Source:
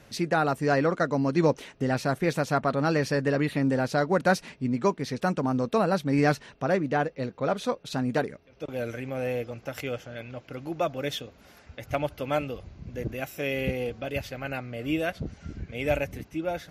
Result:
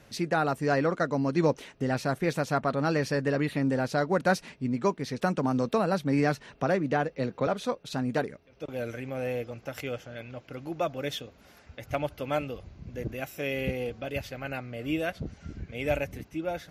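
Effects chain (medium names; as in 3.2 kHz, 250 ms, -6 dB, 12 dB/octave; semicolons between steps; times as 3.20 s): 5.21–7.47 s: three bands compressed up and down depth 70%; trim -2 dB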